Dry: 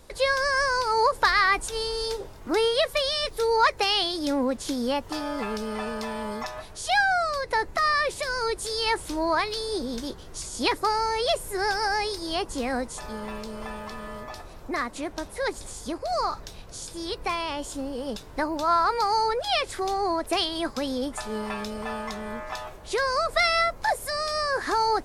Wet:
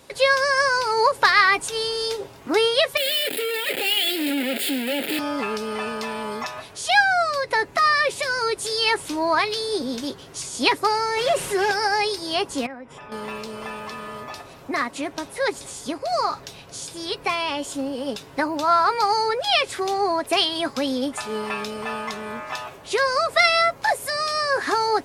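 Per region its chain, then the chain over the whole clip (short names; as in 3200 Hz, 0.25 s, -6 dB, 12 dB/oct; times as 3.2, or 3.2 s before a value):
2.97–5.19 infinite clipping + HPF 250 Hz 24 dB/oct + fixed phaser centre 2600 Hz, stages 4
11.17–11.71 delta modulation 64 kbps, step -43.5 dBFS + comb 5.5 ms, depth 42% + fast leveller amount 50%
12.66–13.12 polynomial smoothing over 25 samples + compressor 5:1, threshold -39 dBFS
whole clip: HPF 110 Hz 12 dB/oct; bell 2700 Hz +4.5 dB 0.8 oct; comb 7.3 ms, depth 34%; gain +3 dB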